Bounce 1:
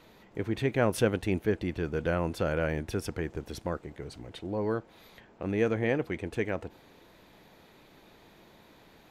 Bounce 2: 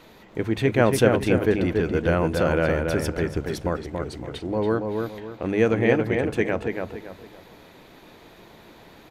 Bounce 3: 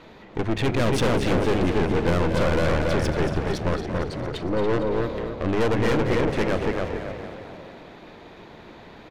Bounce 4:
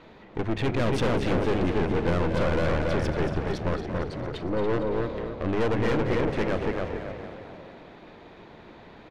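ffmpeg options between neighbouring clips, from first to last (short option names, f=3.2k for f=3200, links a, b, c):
-filter_complex "[0:a]bandreject=f=50:t=h:w=6,bandreject=f=100:t=h:w=6,bandreject=f=150:t=h:w=6,bandreject=f=200:t=h:w=6,asplit=2[a][b];[b]adelay=281,lowpass=f=2.5k:p=1,volume=-4dB,asplit=2[c][d];[d]adelay=281,lowpass=f=2.5k:p=1,volume=0.34,asplit=2[e][f];[f]adelay=281,lowpass=f=2.5k:p=1,volume=0.34,asplit=2[g][h];[h]adelay=281,lowpass=f=2.5k:p=1,volume=0.34[i];[c][e][g][i]amix=inputs=4:normalize=0[j];[a][j]amix=inputs=2:normalize=0,volume=7dB"
-filter_complex "[0:a]aeval=exprs='(tanh(22.4*val(0)+0.7)-tanh(0.7))/22.4':c=same,adynamicsmooth=sensitivity=5.5:basefreq=4.8k,asplit=8[a][b][c][d][e][f][g][h];[b]adelay=229,afreqshift=34,volume=-9.5dB[i];[c]adelay=458,afreqshift=68,volume=-14.1dB[j];[d]adelay=687,afreqshift=102,volume=-18.7dB[k];[e]adelay=916,afreqshift=136,volume=-23.2dB[l];[f]adelay=1145,afreqshift=170,volume=-27.8dB[m];[g]adelay=1374,afreqshift=204,volume=-32.4dB[n];[h]adelay=1603,afreqshift=238,volume=-37dB[o];[a][i][j][k][l][m][n][o]amix=inputs=8:normalize=0,volume=7.5dB"
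-af "highshelf=f=6.9k:g=-11,volume=-3dB"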